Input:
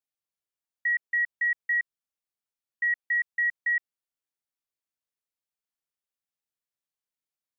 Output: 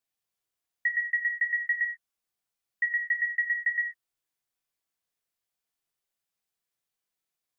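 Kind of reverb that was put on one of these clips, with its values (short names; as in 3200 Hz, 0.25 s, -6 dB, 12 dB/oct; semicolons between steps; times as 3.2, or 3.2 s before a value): non-linear reverb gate 0.17 s falling, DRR 3 dB; gain +3.5 dB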